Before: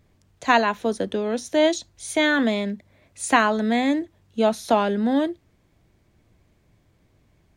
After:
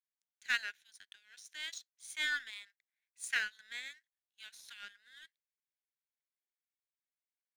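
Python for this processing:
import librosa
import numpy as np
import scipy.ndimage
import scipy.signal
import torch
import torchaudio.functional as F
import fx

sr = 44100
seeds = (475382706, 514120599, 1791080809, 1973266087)

y = fx.brickwall_highpass(x, sr, low_hz=1400.0)
y = fx.power_curve(y, sr, exponent=1.4)
y = F.gain(torch.from_numpy(y), -7.5).numpy()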